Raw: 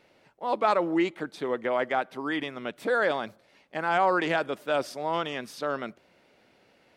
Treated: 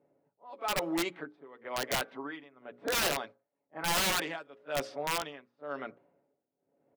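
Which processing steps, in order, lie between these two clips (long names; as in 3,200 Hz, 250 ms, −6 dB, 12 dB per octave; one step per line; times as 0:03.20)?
mains-hum notches 60/120/180/240/300/360/420/480/540 Hz
low-pass that shuts in the quiet parts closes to 500 Hz, open at −21 dBFS
high-pass filter 240 Hz 6 dB per octave
comb filter 7.1 ms, depth 46%
backwards echo 34 ms −16.5 dB
amplitude tremolo 1 Hz, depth 89%
wrap-around overflow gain 21 dB
level −2.5 dB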